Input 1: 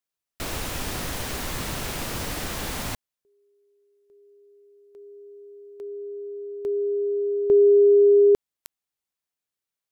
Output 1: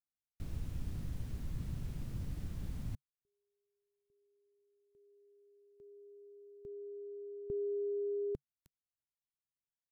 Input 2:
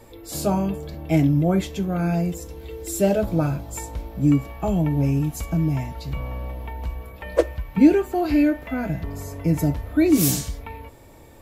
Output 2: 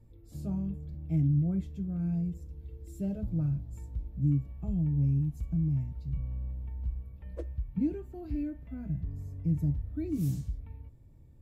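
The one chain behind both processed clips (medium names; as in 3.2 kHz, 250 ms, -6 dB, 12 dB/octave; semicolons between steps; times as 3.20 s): FFT filter 140 Hz 0 dB, 460 Hz -19 dB, 800 Hz -24 dB; trim -4.5 dB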